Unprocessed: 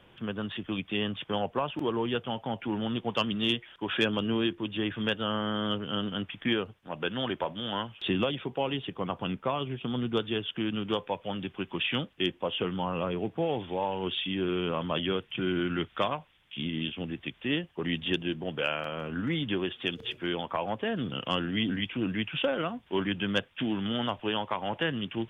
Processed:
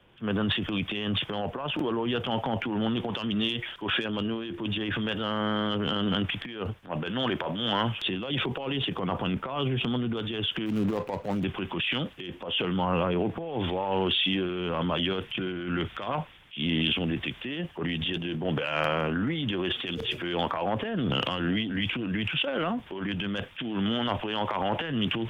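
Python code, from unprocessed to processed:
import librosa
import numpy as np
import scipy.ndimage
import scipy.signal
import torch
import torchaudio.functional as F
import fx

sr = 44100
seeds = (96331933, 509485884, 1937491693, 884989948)

y = fx.median_filter(x, sr, points=25, at=(10.66, 11.44))
y = fx.over_compress(y, sr, threshold_db=-32.0, ratio=-0.5)
y = fx.transient(y, sr, attack_db=-4, sustain_db=9)
y = fx.band_widen(y, sr, depth_pct=40)
y = y * librosa.db_to_amplitude(4.5)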